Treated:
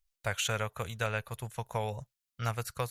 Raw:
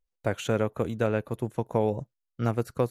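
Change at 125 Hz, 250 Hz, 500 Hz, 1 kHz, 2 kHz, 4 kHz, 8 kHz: −5.5 dB, −15.5 dB, −10.5 dB, −2.5 dB, +2.0 dB, +5.5 dB, can't be measured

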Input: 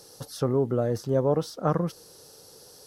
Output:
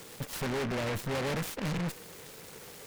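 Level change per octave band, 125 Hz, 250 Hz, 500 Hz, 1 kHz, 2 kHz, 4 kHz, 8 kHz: −7.0, −6.5, −10.0, −5.5, +10.0, +3.0, +1.5 decibels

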